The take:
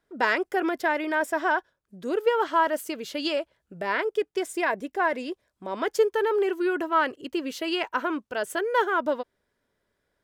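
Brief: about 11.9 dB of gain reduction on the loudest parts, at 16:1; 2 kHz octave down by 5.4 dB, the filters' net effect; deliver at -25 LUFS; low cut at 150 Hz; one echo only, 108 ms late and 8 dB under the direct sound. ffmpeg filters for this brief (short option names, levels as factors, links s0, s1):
-af "highpass=150,equalizer=f=2000:t=o:g=-7.5,acompressor=threshold=0.0398:ratio=16,aecho=1:1:108:0.398,volume=2.66"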